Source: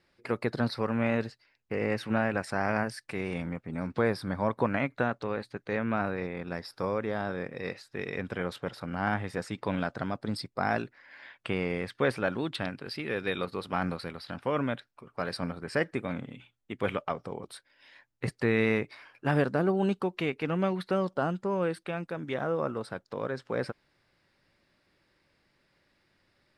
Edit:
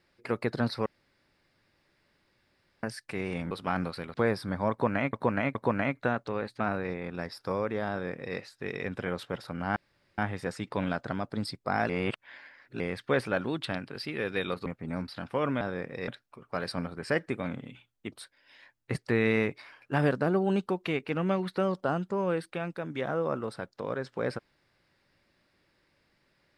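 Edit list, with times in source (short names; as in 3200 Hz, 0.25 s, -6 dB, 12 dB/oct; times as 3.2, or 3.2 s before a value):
0.86–2.83 room tone
3.51–3.93 swap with 13.57–14.2
4.5–4.92 loop, 3 plays
5.55–5.93 cut
7.23–7.7 copy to 14.73
9.09 insert room tone 0.42 s
10.8–11.71 reverse
16.77–17.45 cut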